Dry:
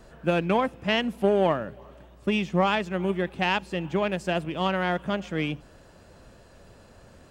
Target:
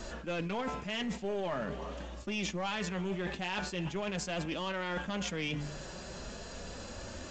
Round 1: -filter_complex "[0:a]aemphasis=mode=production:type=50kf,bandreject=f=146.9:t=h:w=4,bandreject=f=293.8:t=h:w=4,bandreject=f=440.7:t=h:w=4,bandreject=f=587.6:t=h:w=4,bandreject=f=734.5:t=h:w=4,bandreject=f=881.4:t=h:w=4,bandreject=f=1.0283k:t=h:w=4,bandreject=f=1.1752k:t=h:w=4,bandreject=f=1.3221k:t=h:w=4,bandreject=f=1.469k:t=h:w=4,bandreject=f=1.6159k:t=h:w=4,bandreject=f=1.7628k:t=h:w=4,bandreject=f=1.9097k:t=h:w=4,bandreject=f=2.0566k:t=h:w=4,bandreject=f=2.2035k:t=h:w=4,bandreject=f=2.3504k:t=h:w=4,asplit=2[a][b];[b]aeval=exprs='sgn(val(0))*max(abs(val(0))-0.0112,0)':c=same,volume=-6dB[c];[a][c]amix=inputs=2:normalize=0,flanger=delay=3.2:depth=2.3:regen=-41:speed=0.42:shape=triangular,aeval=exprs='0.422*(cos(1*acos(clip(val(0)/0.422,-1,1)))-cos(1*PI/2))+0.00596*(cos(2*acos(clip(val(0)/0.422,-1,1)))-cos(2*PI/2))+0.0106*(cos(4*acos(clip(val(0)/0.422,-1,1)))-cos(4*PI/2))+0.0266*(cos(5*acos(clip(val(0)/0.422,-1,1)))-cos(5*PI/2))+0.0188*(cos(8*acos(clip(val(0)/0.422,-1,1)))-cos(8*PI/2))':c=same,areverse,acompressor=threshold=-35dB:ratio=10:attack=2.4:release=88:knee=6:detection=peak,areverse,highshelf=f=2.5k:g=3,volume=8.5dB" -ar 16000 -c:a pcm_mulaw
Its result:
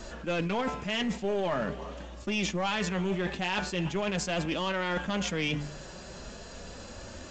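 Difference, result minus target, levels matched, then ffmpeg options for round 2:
compressor: peak gain reduction -5.5 dB
-filter_complex "[0:a]aemphasis=mode=production:type=50kf,bandreject=f=146.9:t=h:w=4,bandreject=f=293.8:t=h:w=4,bandreject=f=440.7:t=h:w=4,bandreject=f=587.6:t=h:w=4,bandreject=f=734.5:t=h:w=4,bandreject=f=881.4:t=h:w=4,bandreject=f=1.0283k:t=h:w=4,bandreject=f=1.1752k:t=h:w=4,bandreject=f=1.3221k:t=h:w=4,bandreject=f=1.469k:t=h:w=4,bandreject=f=1.6159k:t=h:w=4,bandreject=f=1.7628k:t=h:w=4,bandreject=f=1.9097k:t=h:w=4,bandreject=f=2.0566k:t=h:w=4,bandreject=f=2.2035k:t=h:w=4,bandreject=f=2.3504k:t=h:w=4,asplit=2[a][b];[b]aeval=exprs='sgn(val(0))*max(abs(val(0))-0.0112,0)':c=same,volume=-6dB[c];[a][c]amix=inputs=2:normalize=0,flanger=delay=3.2:depth=2.3:regen=-41:speed=0.42:shape=triangular,aeval=exprs='0.422*(cos(1*acos(clip(val(0)/0.422,-1,1)))-cos(1*PI/2))+0.00596*(cos(2*acos(clip(val(0)/0.422,-1,1)))-cos(2*PI/2))+0.0106*(cos(4*acos(clip(val(0)/0.422,-1,1)))-cos(4*PI/2))+0.0266*(cos(5*acos(clip(val(0)/0.422,-1,1)))-cos(5*PI/2))+0.0188*(cos(8*acos(clip(val(0)/0.422,-1,1)))-cos(8*PI/2))':c=same,areverse,acompressor=threshold=-41dB:ratio=10:attack=2.4:release=88:knee=6:detection=peak,areverse,highshelf=f=2.5k:g=3,volume=8.5dB" -ar 16000 -c:a pcm_mulaw

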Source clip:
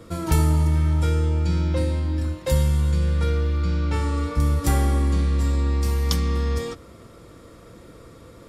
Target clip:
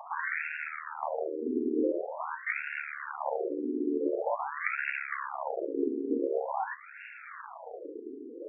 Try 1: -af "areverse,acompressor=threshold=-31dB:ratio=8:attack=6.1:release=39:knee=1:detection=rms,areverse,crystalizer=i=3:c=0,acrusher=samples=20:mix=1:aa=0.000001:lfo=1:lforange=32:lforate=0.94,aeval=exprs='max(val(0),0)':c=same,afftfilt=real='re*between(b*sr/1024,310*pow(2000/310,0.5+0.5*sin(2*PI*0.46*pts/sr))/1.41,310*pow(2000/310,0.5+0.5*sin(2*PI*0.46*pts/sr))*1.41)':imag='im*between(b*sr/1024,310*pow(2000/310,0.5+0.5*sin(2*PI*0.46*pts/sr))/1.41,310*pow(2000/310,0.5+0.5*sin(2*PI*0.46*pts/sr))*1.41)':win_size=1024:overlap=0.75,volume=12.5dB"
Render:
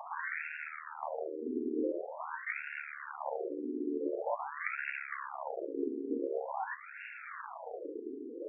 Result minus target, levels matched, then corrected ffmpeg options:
compressor: peak gain reduction +5.5 dB
-af "areverse,acompressor=threshold=-25dB:ratio=8:attack=6.1:release=39:knee=1:detection=rms,areverse,crystalizer=i=3:c=0,acrusher=samples=20:mix=1:aa=0.000001:lfo=1:lforange=32:lforate=0.94,aeval=exprs='max(val(0),0)':c=same,afftfilt=real='re*between(b*sr/1024,310*pow(2000/310,0.5+0.5*sin(2*PI*0.46*pts/sr))/1.41,310*pow(2000/310,0.5+0.5*sin(2*PI*0.46*pts/sr))*1.41)':imag='im*between(b*sr/1024,310*pow(2000/310,0.5+0.5*sin(2*PI*0.46*pts/sr))/1.41,310*pow(2000/310,0.5+0.5*sin(2*PI*0.46*pts/sr))*1.41)':win_size=1024:overlap=0.75,volume=12.5dB"

